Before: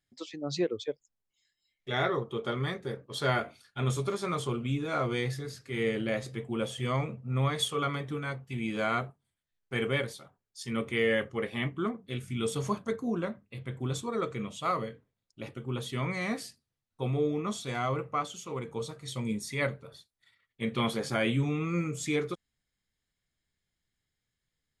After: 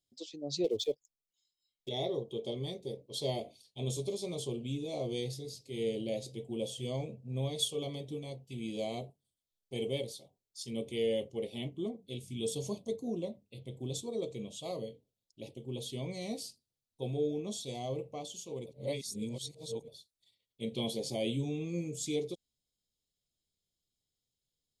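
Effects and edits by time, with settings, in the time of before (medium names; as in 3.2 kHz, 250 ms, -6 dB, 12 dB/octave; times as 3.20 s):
0.64–1.89 s: waveshaping leveller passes 2
18.66–19.88 s: reverse
whole clip: Chebyshev band-stop 570–3700 Hz, order 2; bass shelf 400 Hz -7 dB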